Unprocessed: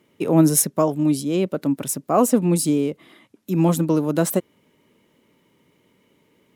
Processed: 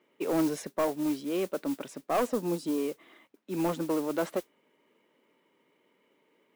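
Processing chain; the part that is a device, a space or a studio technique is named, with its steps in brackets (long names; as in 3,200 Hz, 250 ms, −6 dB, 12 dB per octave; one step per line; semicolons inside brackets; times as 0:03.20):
carbon microphone (band-pass filter 350–2,900 Hz; soft clipping −16.5 dBFS, distortion −13 dB; noise that follows the level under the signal 18 dB)
0:02.29–0:02.78: parametric band 2,300 Hz −7 dB 0.74 octaves
level −4.5 dB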